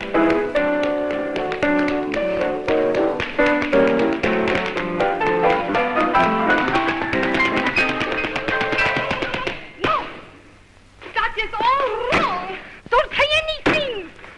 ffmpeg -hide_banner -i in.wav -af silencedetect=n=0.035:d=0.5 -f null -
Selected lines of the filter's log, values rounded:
silence_start: 10.23
silence_end: 11.02 | silence_duration: 0.79